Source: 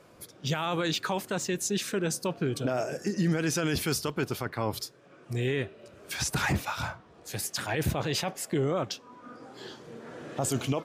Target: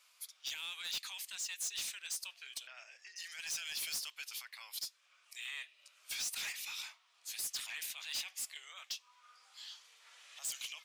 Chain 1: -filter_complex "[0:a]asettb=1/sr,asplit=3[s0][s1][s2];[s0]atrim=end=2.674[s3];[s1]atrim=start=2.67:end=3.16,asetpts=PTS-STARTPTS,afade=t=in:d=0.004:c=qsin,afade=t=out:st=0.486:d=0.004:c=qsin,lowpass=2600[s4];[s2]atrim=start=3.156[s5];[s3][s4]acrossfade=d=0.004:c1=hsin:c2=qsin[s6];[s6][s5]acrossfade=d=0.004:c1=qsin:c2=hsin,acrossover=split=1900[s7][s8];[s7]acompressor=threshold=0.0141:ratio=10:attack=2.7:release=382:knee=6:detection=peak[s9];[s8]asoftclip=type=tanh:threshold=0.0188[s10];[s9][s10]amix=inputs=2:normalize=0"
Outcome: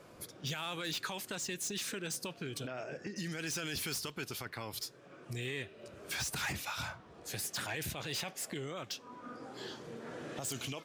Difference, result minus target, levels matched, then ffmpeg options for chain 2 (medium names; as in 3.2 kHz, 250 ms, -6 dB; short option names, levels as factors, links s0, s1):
2 kHz band +2.5 dB
-filter_complex "[0:a]asettb=1/sr,asplit=3[s0][s1][s2];[s0]atrim=end=2.674[s3];[s1]atrim=start=2.67:end=3.16,asetpts=PTS-STARTPTS,afade=t=in:d=0.004:c=qsin,afade=t=out:st=0.486:d=0.004:c=qsin,lowpass=2600[s4];[s2]atrim=start=3.156[s5];[s3][s4]acrossfade=d=0.004:c1=hsin:c2=qsin[s6];[s6][s5]acrossfade=d=0.004:c1=qsin:c2=hsin,acrossover=split=1900[s7][s8];[s7]acompressor=threshold=0.0141:ratio=10:attack=2.7:release=382:knee=6:detection=peak,highpass=f=1500:w=0.5412,highpass=f=1500:w=1.3066[s9];[s8]asoftclip=type=tanh:threshold=0.0188[s10];[s9][s10]amix=inputs=2:normalize=0"